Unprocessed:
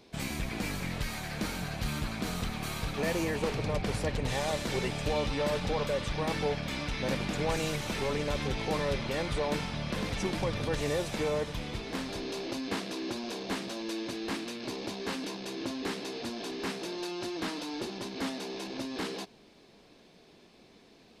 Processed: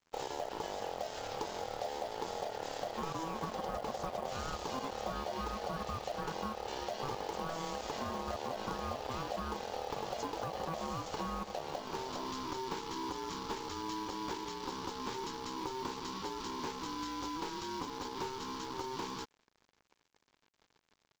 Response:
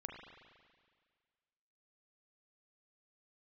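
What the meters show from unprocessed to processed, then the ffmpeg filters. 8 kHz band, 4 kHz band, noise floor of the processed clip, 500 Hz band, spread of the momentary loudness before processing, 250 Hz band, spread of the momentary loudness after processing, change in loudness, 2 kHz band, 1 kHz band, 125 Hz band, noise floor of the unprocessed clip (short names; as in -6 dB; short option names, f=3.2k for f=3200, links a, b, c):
-6.0 dB, -7.0 dB, -78 dBFS, -6.5 dB, 6 LU, -8.5 dB, 2 LU, -6.0 dB, -10.0 dB, +1.0 dB, -12.5 dB, -58 dBFS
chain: -af "equalizer=f=1.6k:w=0.73:g=-10.5,acompressor=threshold=-36dB:ratio=6,aeval=exprs='val(0)*sin(2*PI*650*n/s)':c=same,aresample=16000,aeval=exprs='sgn(val(0))*max(abs(val(0))-0.00158,0)':c=same,aresample=44100,acrusher=bits=6:mode=log:mix=0:aa=0.000001,volume=4.5dB"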